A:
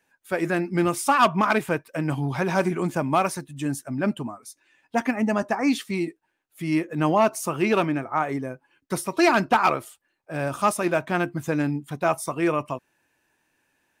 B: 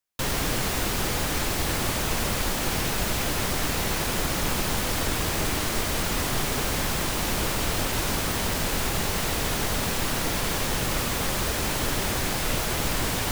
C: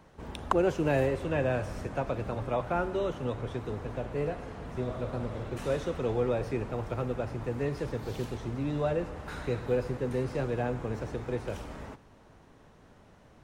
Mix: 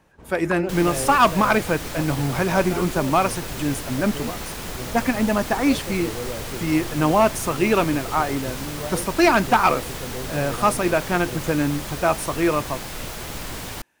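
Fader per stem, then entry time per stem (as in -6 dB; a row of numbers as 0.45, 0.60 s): +2.5, -6.0, -3.0 dB; 0.00, 0.50, 0.00 s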